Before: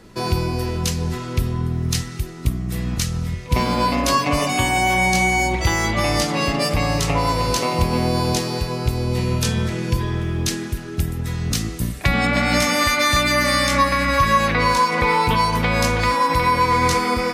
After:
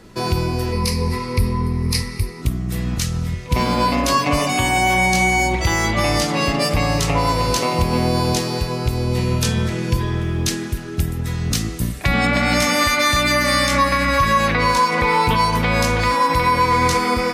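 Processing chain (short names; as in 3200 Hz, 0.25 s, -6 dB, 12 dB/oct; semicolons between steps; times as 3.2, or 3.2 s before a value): 0.72–2.42 ripple EQ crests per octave 0.89, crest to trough 14 dB; maximiser +7.5 dB; gain -6 dB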